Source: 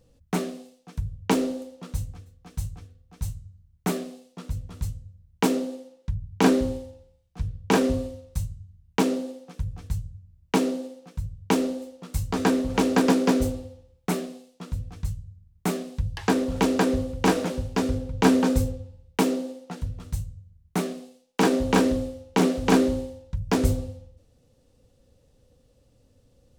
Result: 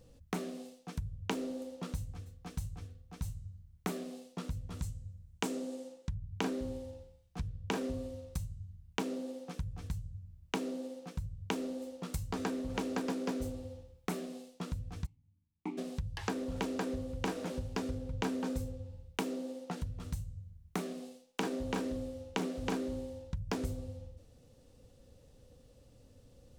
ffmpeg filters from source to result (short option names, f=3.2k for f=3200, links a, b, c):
-filter_complex "[0:a]asettb=1/sr,asplit=3[a][b][c];[a]atrim=end=4.794[d];[b]atrim=start=4.79:end=6.09,asetpts=PTS-STARTPTS,afade=t=in:d=0.004:c=qsin,afade=t=out:st=1.296:d=0.004:c=qsin,equalizer=f=7.7k:w=1.5:g=6[e];[c]atrim=start=6.086[f];[d][e]acrossfade=d=0.004:c1=hsin:c2=qsin[g];[g][f]acrossfade=d=0.004:c1=qsin:c2=hsin,asplit=3[h][i][j];[h]afade=t=out:st=15.05:d=0.02[k];[i]asplit=3[l][m][n];[l]bandpass=f=300:t=q:w=8,volume=0dB[o];[m]bandpass=f=870:t=q:w=8,volume=-6dB[p];[n]bandpass=f=2.24k:t=q:w=8,volume=-9dB[q];[o][p][q]amix=inputs=3:normalize=0,afade=t=in:st=15.05:d=0.02,afade=t=out:st=15.77:d=0.02[r];[j]afade=t=in:st=15.77:d=0.02[s];[k][r][s]amix=inputs=3:normalize=0,acompressor=threshold=-37dB:ratio=4,volume=1dB"